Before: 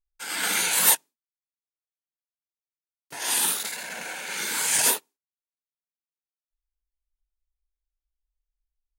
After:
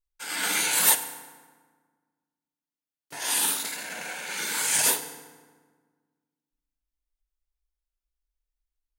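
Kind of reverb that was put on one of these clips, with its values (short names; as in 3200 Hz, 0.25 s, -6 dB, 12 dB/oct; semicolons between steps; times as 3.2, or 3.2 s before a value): FDN reverb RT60 1.5 s, low-frequency decay 1.35×, high-frequency decay 0.65×, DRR 8.5 dB; gain -1.5 dB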